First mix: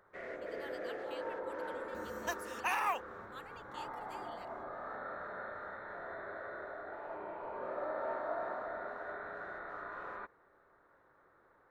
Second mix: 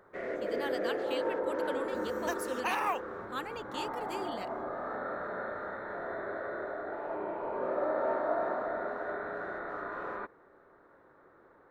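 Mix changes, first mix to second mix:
speech +11.0 dB; first sound +3.5 dB; master: add bell 300 Hz +7.5 dB 2.2 oct

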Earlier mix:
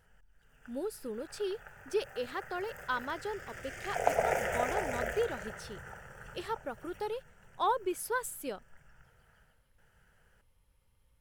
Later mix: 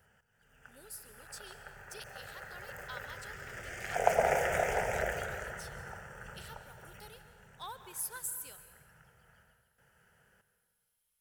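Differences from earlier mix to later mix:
speech: add pre-emphasis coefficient 0.97; reverb: on, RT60 1.6 s

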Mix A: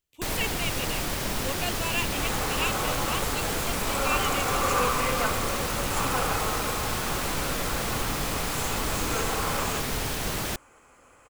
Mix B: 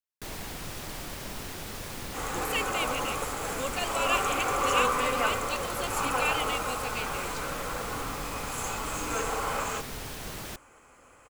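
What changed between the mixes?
speech: entry +2.15 s; first sound -9.0 dB

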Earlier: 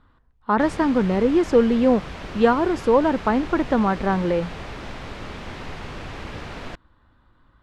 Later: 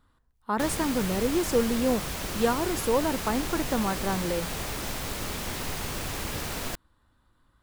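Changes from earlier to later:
speech -8.0 dB; master: remove LPF 3000 Hz 12 dB/oct

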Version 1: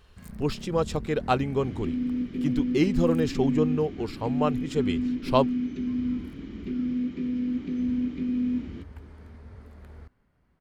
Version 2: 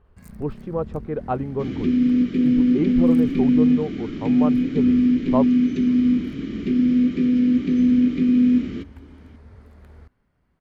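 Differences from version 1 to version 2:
speech: add LPF 1100 Hz 12 dB/oct; second sound +10.5 dB

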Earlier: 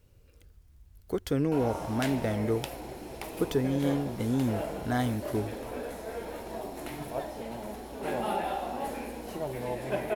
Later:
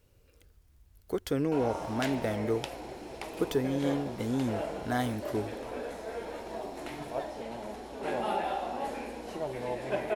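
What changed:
background: add LPF 7900 Hz 12 dB/oct; master: add tone controls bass -5 dB, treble 0 dB

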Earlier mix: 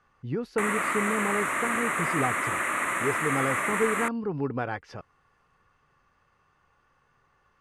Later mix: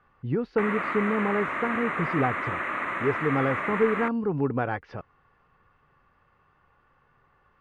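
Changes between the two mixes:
speech +4.0 dB; master: add air absorption 270 m

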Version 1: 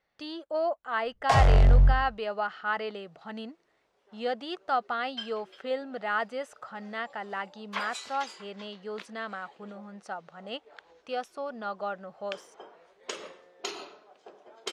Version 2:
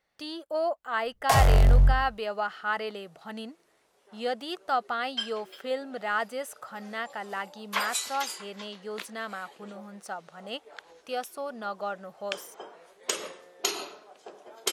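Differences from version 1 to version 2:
second sound +4.0 dB; master: remove air absorption 100 m

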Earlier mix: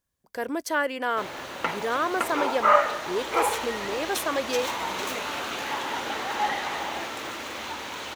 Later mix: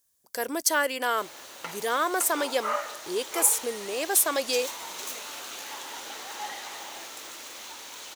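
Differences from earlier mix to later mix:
background -11.0 dB; master: add tone controls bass -8 dB, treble +15 dB

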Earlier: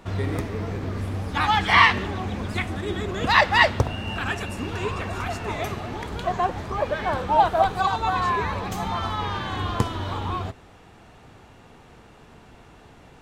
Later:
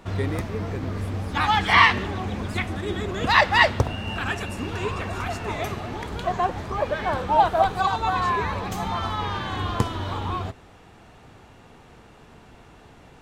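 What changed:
speech +5.0 dB; reverb: off

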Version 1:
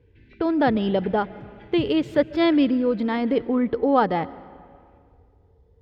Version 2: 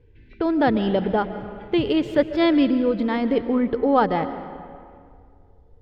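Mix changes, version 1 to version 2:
speech: send +8.5 dB; master: remove HPF 54 Hz

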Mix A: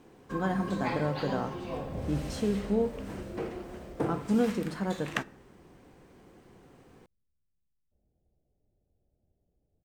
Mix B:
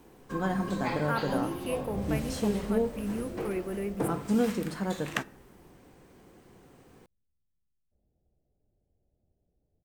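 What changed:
speech: unmuted; master: add high shelf 8200 Hz +8.5 dB

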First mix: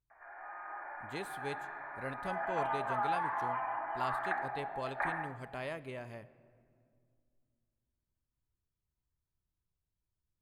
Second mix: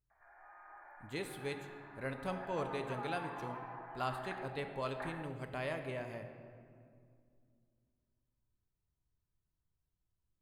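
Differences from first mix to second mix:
speech: send +10.5 dB; background -11.0 dB

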